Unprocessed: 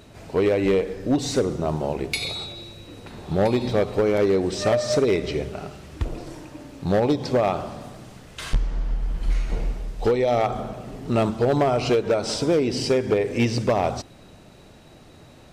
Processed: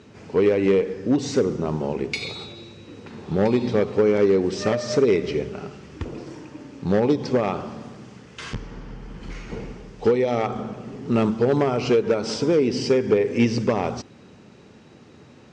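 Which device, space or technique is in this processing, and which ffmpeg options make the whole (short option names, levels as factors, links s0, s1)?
car door speaker: -af "highpass=97,equalizer=f=220:t=q:w=4:g=5,equalizer=f=430:t=q:w=4:g=4,equalizer=f=660:t=q:w=4:g=-8,equalizer=f=3900:t=q:w=4:g=-6,lowpass=f=6700:w=0.5412,lowpass=f=6700:w=1.3066"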